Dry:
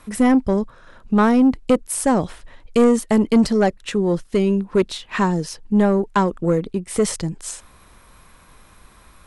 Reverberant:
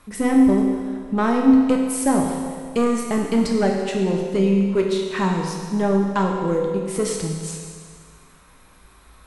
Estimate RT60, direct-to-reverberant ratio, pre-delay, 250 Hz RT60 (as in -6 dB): 1.9 s, 0.0 dB, 7 ms, 1.9 s